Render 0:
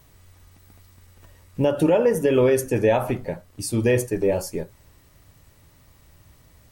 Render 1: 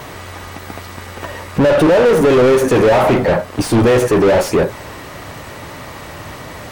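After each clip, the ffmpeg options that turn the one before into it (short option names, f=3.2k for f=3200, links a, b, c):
-filter_complex "[0:a]asplit=2[a][b];[b]highpass=f=720:p=1,volume=37dB,asoftclip=type=tanh:threshold=-8.5dB[c];[a][c]amix=inputs=2:normalize=0,lowpass=f=1.2k:p=1,volume=-6dB,volume=4.5dB"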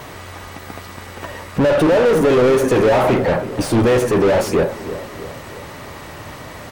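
-filter_complex "[0:a]asplit=2[a][b];[b]adelay=326,lowpass=f=2k:p=1,volume=-13dB,asplit=2[c][d];[d]adelay=326,lowpass=f=2k:p=1,volume=0.54,asplit=2[e][f];[f]adelay=326,lowpass=f=2k:p=1,volume=0.54,asplit=2[g][h];[h]adelay=326,lowpass=f=2k:p=1,volume=0.54,asplit=2[i][j];[j]adelay=326,lowpass=f=2k:p=1,volume=0.54,asplit=2[k][l];[l]adelay=326,lowpass=f=2k:p=1,volume=0.54[m];[a][c][e][g][i][k][m]amix=inputs=7:normalize=0,volume=-3dB"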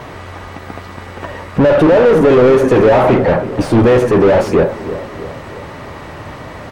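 -af "lowpass=f=2.2k:p=1,volume=5dB"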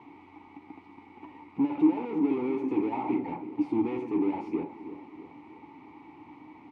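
-filter_complex "[0:a]asplit=3[a][b][c];[a]bandpass=f=300:t=q:w=8,volume=0dB[d];[b]bandpass=f=870:t=q:w=8,volume=-6dB[e];[c]bandpass=f=2.24k:t=q:w=8,volume=-9dB[f];[d][e][f]amix=inputs=3:normalize=0,volume=-7.5dB"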